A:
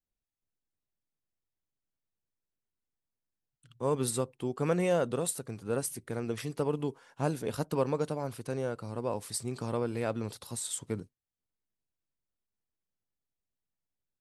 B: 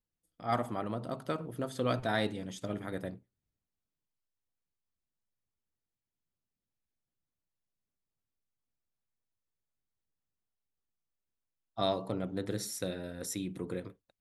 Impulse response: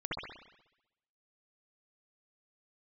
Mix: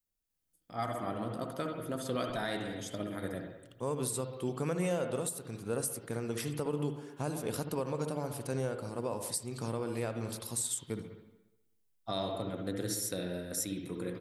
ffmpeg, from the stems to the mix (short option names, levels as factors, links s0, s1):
-filter_complex "[0:a]volume=0.708,asplit=2[s0][s1];[s1]volume=0.335[s2];[1:a]adelay=300,volume=0.596,asplit=2[s3][s4];[s4]volume=0.562[s5];[2:a]atrim=start_sample=2205[s6];[s2][s5]amix=inputs=2:normalize=0[s7];[s7][s6]afir=irnorm=-1:irlink=0[s8];[s0][s3][s8]amix=inputs=3:normalize=0,highshelf=f=6300:g=10.5,alimiter=limit=0.0708:level=0:latency=1:release=269"